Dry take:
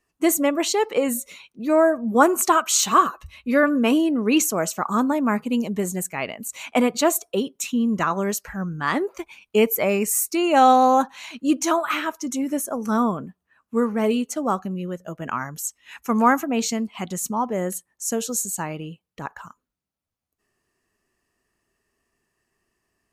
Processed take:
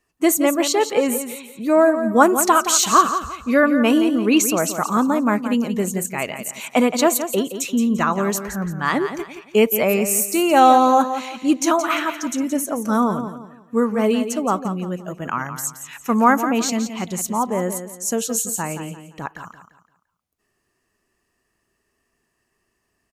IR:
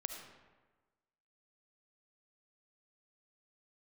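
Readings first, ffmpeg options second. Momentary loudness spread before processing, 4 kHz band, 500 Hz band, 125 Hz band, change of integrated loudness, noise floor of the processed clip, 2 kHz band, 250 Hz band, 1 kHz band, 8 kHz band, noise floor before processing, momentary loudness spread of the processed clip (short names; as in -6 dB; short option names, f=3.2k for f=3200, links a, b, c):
13 LU, +3.0 dB, +3.0 dB, +3.0 dB, +3.0 dB, -72 dBFS, +3.0 dB, +3.0 dB, +3.0 dB, +3.0 dB, -81 dBFS, 12 LU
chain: -af "aecho=1:1:172|344|516|688:0.316|0.104|0.0344|0.0114,volume=2.5dB"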